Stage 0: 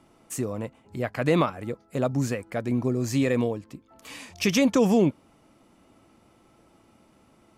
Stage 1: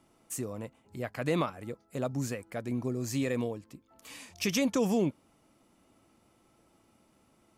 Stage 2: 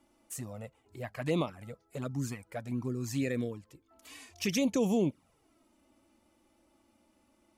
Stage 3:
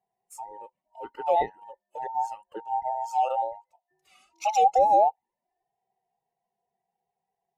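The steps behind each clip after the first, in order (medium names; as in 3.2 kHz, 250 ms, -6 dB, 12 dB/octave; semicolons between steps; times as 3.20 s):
treble shelf 5.6 kHz +7 dB; trim -7.5 dB
touch-sensitive flanger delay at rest 3.5 ms, full sweep at -24.5 dBFS
every band turned upside down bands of 1 kHz; spectral contrast expander 1.5:1; trim +7 dB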